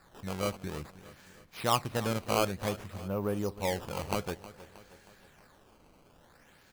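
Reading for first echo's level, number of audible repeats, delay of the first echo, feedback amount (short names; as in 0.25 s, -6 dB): -16.5 dB, 4, 0.315 s, 52%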